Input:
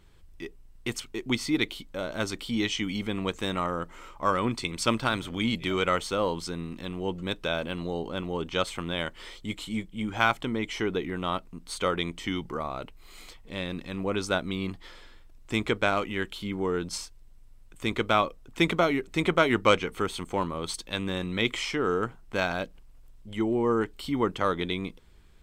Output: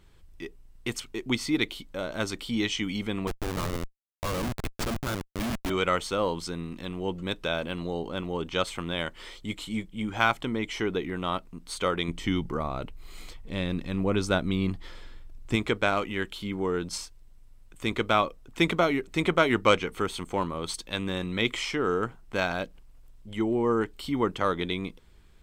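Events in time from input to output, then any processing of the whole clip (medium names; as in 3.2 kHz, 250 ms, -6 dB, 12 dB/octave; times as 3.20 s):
3.27–5.70 s: Schmitt trigger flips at -27.5 dBFS
12.08–15.56 s: bass shelf 250 Hz +8.5 dB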